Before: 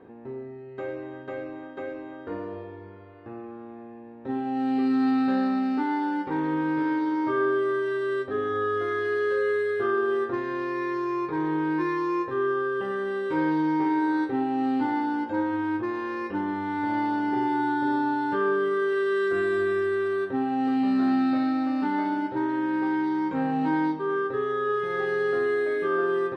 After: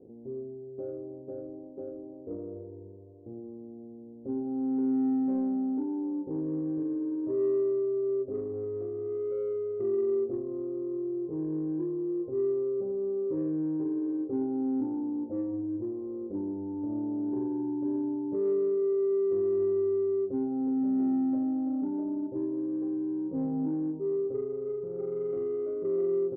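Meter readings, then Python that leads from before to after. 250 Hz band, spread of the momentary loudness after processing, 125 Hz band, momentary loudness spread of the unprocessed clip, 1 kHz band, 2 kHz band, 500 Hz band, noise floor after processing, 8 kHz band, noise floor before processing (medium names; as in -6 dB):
-4.0 dB, 14 LU, -3.5 dB, 13 LU, -21.5 dB, under -35 dB, -3.0 dB, -46 dBFS, no reading, -42 dBFS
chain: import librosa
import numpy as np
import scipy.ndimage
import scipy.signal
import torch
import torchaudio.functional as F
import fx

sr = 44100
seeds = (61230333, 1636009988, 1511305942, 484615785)

p1 = scipy.signal.sosfilt(scipy.signal.butter(6, 590.0, 'lowpass', fs=sr, output='sos'), x)
p2 = 10.0 ** (-26.0 / 20.0) * np.tanh(p1 / 10.0 ** (-26.0 / 20.0))
p3 = p1 + (p2 * 10.0 ** (-8.0 / 20.0))
p4 = fx.doubler(p3, sr, ms=18.0, db=-11)
y = p4 * 10.0 ** (-5.5 / 20.0)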